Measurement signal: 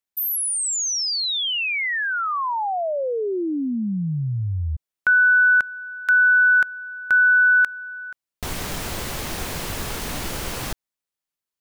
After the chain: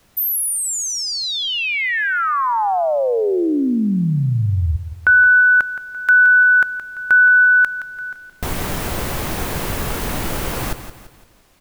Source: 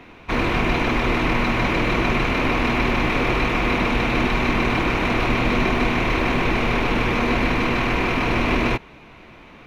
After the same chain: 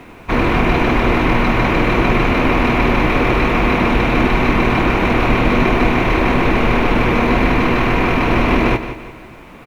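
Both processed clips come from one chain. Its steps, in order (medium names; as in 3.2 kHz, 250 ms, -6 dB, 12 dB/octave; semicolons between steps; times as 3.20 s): peaking EQ 5.2 kHz -6.5 dB 2.3 oct; added noise pink -62 dBFS; feedback delay 170 ms, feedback 41%, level -11.5 dB; trim +6.5 dB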